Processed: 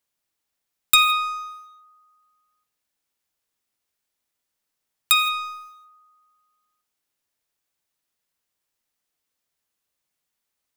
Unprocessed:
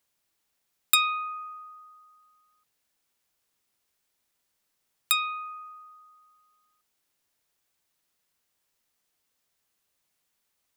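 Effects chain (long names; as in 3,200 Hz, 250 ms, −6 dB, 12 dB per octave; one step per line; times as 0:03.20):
0:05.21–0:05.85: bass and treble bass −6 dB, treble +6 dB
leveller curve on the samples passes 2
reverb whose tail is shaped and stops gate 190 ms flat, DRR 11.5 dB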